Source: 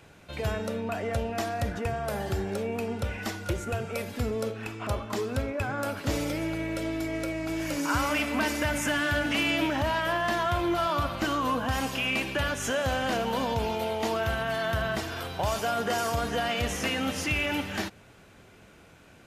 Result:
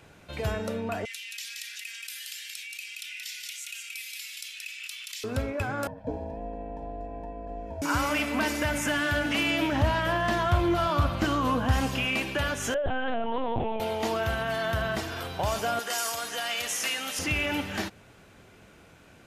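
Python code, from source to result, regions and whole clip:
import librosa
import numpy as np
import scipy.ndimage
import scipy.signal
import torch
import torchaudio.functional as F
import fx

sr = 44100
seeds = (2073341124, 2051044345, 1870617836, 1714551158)

y = fx.chain(x, sr, fx.steep_highpass(hz=2300.0, slope=36),
    fx.echo_single(ms=177, db=-6.5),
    fx.env_flatten(amount_pct=70), at=(1.05, 5.24))
y = fx.chain(y, sr, fx.moving_average(points=53),
    fx.ring_mod(carrier_hz=370.0), at=(5.87, 7.82))
y = fx.chain(y, sr, fx.highpass(hz=44.0, slope=12),
    fx.low_shelf(hz=170.0, db=10.5),
    fx.doppler_dist(depth_ms=0.14), at=(9.72, 12.05))
y = fx.chain(y, sr, fx.envelope_sharpen(power=1.5),
    fx.lpc_vocoder(seeds[0], excitation='pitch_kept', order=10), at=(12.74, 13.8))
y = fx.chain(y, sr, fx.highpass(hz=1300.0, slope=6),
    fx.peak_eq(hz=9800.0, db=8.0, octaves=2.0), at=(15.79, 17.19))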